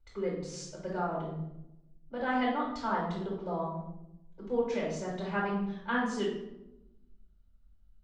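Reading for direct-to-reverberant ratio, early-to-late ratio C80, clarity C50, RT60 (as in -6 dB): -7.5 dB, 6.5 dB, 2.5 dB, 0.90 s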